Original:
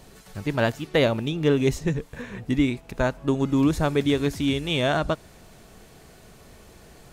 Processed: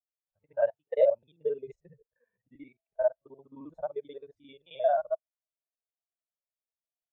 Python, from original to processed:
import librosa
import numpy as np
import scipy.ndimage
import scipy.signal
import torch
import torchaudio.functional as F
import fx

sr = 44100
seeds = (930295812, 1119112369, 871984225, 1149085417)

y = fx.local_reverse(x, sr, ms=44.0)
y = fx.low_shelf_res(y, sr, hz=420.0, db=-10.5, q=1.5)
y = fx.spectral_expand(y, sr, expansion=2.5)
y = y * 10.0 ** (-4.0 / 20.0)